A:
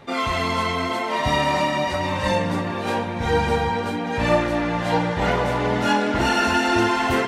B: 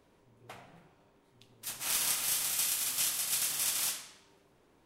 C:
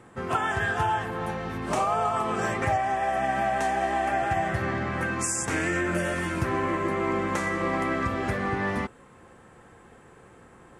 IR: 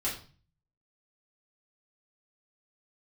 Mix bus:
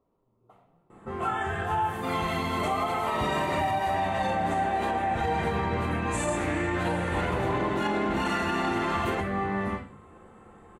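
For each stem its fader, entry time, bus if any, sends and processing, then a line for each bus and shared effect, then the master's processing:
−7.5 dB, 1.95 s, no bus, no send, no processing
−8.0 dB, 0.00 s, bus A, send −18 dB, no processing
−3.0 dB, 0.90 s, bus A, send −7 dB, no processing
bus A: 0.0 dB, linear-phase brick-wall low-pass 1,400 Hz; downward compressor, threshold −37 dBFS, peak gain reduction 12.5 dB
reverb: on, RT60 0.40 s, pre-delay 3 ms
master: parametric band 5,300 Hz −10 dB 0.35 octaves; brickwall limiter −18.5 dBFS, peak gain reduction 5.5 dB

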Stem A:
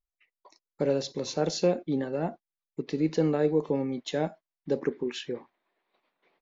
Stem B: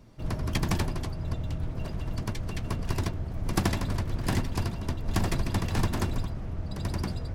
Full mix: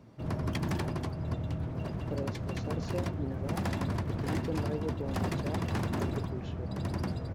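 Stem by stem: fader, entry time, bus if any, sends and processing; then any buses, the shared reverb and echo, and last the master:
−11.0 dB, 1.30 s, no send, no processing
+1.5 dB, 0.00 s, no send, wavefolder on the positive side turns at −22 dBFS; high-pass filter 97 Hz 12 dB per octave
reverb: not used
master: high-shelf EQ 2,700 Hz −9.5 dB; brickwall limiter −22.5 dBFS, peak gain reduction 8.5 dB

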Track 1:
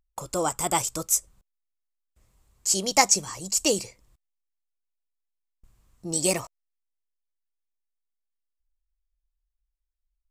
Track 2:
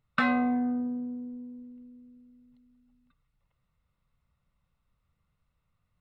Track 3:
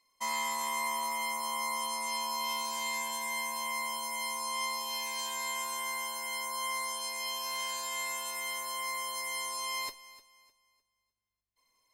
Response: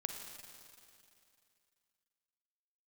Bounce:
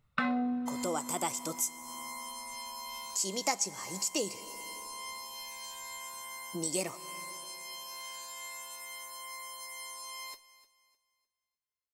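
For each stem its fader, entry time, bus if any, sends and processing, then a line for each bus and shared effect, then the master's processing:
−1.5 dB, 0.50 s, send −12.5 dB, no echo send, Chebyshev high-pass filter 210 Hz, order 2
+3.0 dB, 0.00 s, send −13 dB, echo send −9.5 dB, reverb reduction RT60 1.8 s
−9.0 dB, 0.45 s, no send, no echo send, bass and treble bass −7 dB, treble +3 dB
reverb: on, RT60 2.6 s, pre-delay 38 ms
echo: repeating echo 61 ms, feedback 39%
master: downward compressor 2 to 1, threshold −36 dBFS, peak gain reduction 12.5 dB

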